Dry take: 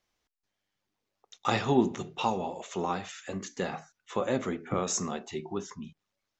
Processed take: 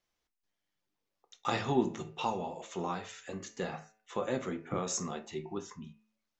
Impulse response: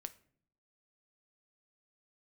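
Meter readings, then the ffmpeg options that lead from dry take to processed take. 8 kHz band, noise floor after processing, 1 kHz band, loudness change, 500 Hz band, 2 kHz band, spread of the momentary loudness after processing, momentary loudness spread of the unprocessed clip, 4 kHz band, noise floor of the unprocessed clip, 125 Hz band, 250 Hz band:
−4.0 dB, −85 dBFS, −4.5 dB, −4.5 dB, −4.5 dB, −4.5 dB, 12 LU, 12 LU, −4.5 dB, −84 dBFS, −4.0 dB, −5.0 dB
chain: -filter_complex "[0:a]bandreject=frequency=108.7:width_type=h:width=4,bandreject=frequency=217.4:width_type=h:width=4,bandreject=frequency=326.1:width_type=h:width=4,bandreject=frequency=434.8:width_type=h:width=4,bandreject=frequency=543.5:width_type=h:width=4,bandreject=frequency=652.2:width_type=h:width=4,bandreject=frequency=760.9:width_type=h:width=4,bandreject=frequency=869.6:width_type=h:width=4,bandreject=frequency=978.3:width_type=h:width=4,bandreject=frequency=1087:width_type=h:width=4,bandreject=frequency=1195.7:width_type=h:width=4,bandreject=frequency=1304.4:width_type=h:width=4,bandreject=frequency=1413.1:width_type=h:width=4,bandreject=frequency=1521.8:width_type=h:width=4,bandreject=frequency=1630.5:width_type=h:width=4,bandreject=frequency=1739.2:width_type=h:width=4,bandreject=frequency=1847.9:width_type=h:width=4,bandreject=frequency=1956.6:width_type=h:width=4,bandreject=frequency=2065.3:width_type=h:width=4,bandreject=frequency=2174:width_type=h:width=4,bandreject=frequency=2282.7:width_type=h:width=4,bandreject=frequency=2391.4:width_type=h:width=4,bandreject=frequency=2500.1:width_type=h:width=4,bandreject=frequency=2608.8:width_type=h:width=4,bandreject=frequency=2717.5:width_type=h:width=4,bandreject=frequency=2826.2:width_type=h:width=4[link_01];[1:a]atrim=start_sample=2205,atrim=end_sample=3528[link_02];[link_01][link_02]afir=irnorm=-1:irlink=0"

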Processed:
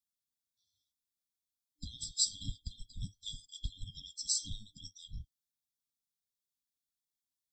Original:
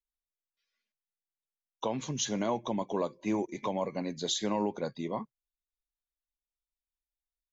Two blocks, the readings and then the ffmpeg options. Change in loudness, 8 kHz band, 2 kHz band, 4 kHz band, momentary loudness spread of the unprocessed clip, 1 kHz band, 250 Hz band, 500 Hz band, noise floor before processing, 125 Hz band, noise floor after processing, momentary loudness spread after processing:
−4.5 dB, can't be measured, below −40 dB, −0.5 dB, 7 LU, below −40 dB, −22.5 dB, below −40 dB, below −85 dBFS, −5.0 dB, below −85 dBFS, 18 LU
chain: -af "afftfilt=real='real(if(lt(b,960),b+48*(1-2*mod(floor(b/48),2)),b),0)':imag='imag(if(lt(b,960),b+48*(1-2*mod(floor(b/48),2)),b),0)':win_size=2048:overlap=0.75,afftfilt=real='re*(1-between(b*sr/4096,300,3200))':imag='im*(1-between(b*sr/4096,300,3200))':win_size=4096:overlap=0.75,volume=4dB"

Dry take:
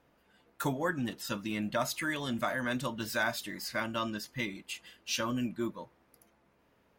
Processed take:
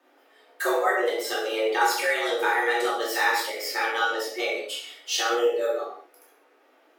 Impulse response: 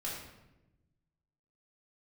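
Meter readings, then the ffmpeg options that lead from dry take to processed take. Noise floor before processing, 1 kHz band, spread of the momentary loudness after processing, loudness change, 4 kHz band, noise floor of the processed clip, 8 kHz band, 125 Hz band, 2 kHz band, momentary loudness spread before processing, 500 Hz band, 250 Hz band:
−69 dBFS, +12.0 dB, 7 LU, +9.5 dB, +9.0 dB, −61 dBFS, +8.0 dB, below −40 dB, +10.0 dB, 6 LU, +13.0 dB, −2.0 dB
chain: -filter_complex "[0:a]afreqshift=230,bandreject=frequency=1000:width=25[link_01];[1:a]atrim=start_sample=2205,afade=type=out:start_time=0.27:duration=0.01,atrim=end_sample=12348[link_02];[link_01][link_02]afir=irnorm=-1:irlink=0,volume=7.5dB"

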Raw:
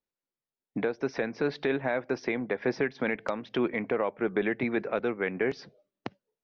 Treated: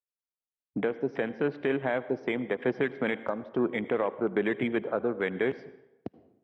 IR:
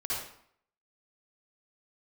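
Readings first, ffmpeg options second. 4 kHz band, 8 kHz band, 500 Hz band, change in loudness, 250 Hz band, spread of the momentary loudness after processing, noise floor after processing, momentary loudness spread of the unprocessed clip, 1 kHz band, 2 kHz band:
−1.5 dB, can't be measured, +0.5 dB, 0.0 dB, +0.5 dB, 8 LU, below −85 dBFS, 8 LU, −0.5 dB, −1.0 dB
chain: -filter_complex "[0:a]highshelf=frequency=2300:gain=-2,afwtdn=0.0141,asplit=2[link_01][link_02];[1:a]atrim=start_sample=2205,asetrate=30429,aresample=44100[link_03];[link_02][link_03]afir=irnorm=-1:irlink=0,volume=-23dB[link_04];[link_01][link_04]amix=inputs=2:normalize=0"

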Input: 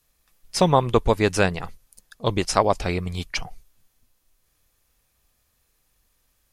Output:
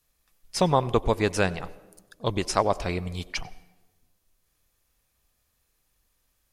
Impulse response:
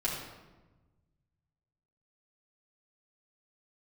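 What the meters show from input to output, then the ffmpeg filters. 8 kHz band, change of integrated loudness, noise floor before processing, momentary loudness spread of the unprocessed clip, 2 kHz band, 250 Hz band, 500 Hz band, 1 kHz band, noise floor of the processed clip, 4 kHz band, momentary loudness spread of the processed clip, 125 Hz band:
−4.0 dB, −4.0 dB, −69 dBFS, 12 LU, −4.0 dB, −4.0 dB, −4.0 dB, −4.0 dB, −73 dBFS, −4.0 dB, 12 LU, −4.0 dB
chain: -filter_complex "[0:a]asplit=2[link_01][link_02];[link_02]highpass=330[link_03];[1:a]atrim=start_sample=2205,lowshelf=frequency=500:gain=11,adelay=91[link_04];[link_03][link_04]afir=irnorm=-1:irlink=0,volume=-27dB[link_05];[link_01][link_05]amix=inputs=2:normalize=0,volume=-4dB"

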